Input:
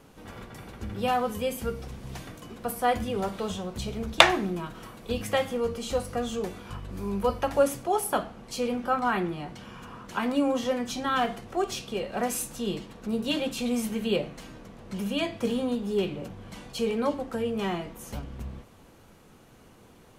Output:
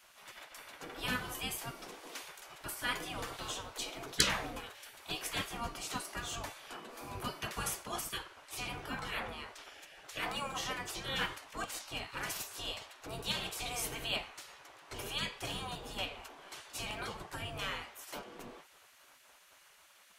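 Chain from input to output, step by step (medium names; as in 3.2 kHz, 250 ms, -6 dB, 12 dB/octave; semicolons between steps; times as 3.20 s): band-stop 550 Hz, Q 12; spectral gate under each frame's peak -15 dB weak; trim +1 dB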